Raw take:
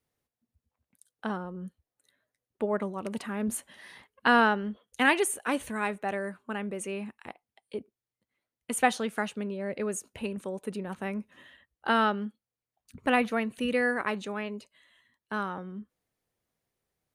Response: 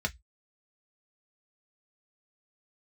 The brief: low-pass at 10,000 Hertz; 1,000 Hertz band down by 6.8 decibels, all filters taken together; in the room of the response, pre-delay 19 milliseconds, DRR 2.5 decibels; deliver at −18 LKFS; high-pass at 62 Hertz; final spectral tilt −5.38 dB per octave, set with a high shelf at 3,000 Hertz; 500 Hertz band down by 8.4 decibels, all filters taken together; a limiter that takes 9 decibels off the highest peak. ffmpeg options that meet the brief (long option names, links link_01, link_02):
-filter_complex "[0:a]highpass=62,lowpass=10000,equalizer=frequency=500:width_type=o:gain=-9,equalizer=frequency=1000:width_type=o:gain=-5,highshelf=frequency=3000:gain=-8.5,alimiter=level_in=0.5dB:limit=-24dB:level=0:latency=1,volume=-0.5dB,asplit=2[link_01][link_02];[1:a]atrim=start_sample=2205,adelay=19[link_03];[link_02][link_03]afir=irnorm=-1:irlink=0,volume=-8.5dB[link_04];[link_01][link_04]amix=inputs=2:normalize=0,volume=17dB"